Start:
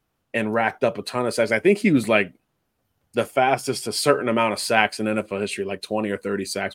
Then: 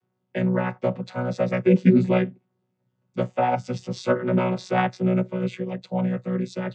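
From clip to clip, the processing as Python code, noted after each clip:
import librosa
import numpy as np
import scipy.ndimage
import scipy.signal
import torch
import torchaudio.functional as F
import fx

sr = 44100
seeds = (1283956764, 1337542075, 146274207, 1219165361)

y = fx.chord_vocoder(x, sr, chord='bare fifth', root=47)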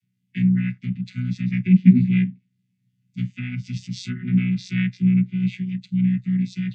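y = fx.env_lowpass_down(x, sr, base_hz=2500.0, full_db=-18.0)
y = fx.hpss(y, sr, part='harmonic', gain_db=6)
y = scipy.signal.sosfilt(scipy.signal.ellip(3, 1.0, 50, [220.0, 2100.0], 'bandstop', fs=sr, output='sos'), y)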